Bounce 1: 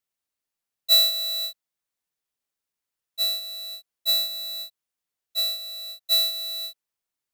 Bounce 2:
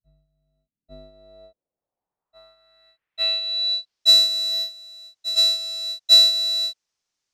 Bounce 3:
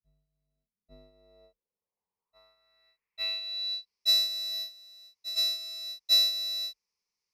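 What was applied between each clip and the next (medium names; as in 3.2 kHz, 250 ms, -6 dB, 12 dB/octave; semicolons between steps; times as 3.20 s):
reverse echo 847 ms -15 dB; low-pass sweep 140 Hz -> 5.9 kHz, 0.27–4.10 s; trim +5.5 dB
rippled EQ curve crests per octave 0.85, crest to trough 11 dB; trim -8 dB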